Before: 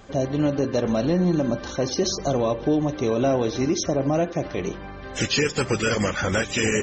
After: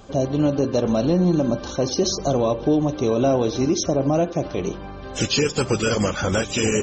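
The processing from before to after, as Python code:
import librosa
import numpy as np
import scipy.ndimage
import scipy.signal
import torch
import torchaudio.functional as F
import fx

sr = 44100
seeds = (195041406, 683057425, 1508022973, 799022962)

y = fx.peak_eq(x, sr, hz=1900.0, db=-10.0, octaves=0.54)
y = y * librosa.db_to_amplitude(2.5)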